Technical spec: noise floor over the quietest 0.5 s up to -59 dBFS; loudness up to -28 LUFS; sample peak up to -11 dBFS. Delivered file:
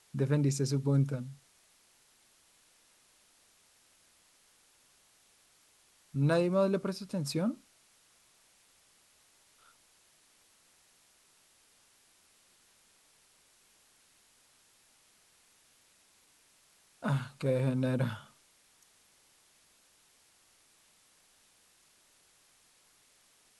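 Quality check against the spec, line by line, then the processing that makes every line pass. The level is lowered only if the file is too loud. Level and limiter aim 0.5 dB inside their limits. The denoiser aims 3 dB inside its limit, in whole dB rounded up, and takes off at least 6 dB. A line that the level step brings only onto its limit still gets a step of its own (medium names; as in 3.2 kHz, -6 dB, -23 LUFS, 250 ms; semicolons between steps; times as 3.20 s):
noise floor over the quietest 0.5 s -66 dBFS: pass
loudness -31.5 LUFS: pass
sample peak -17.0 dBFS: pass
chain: none needed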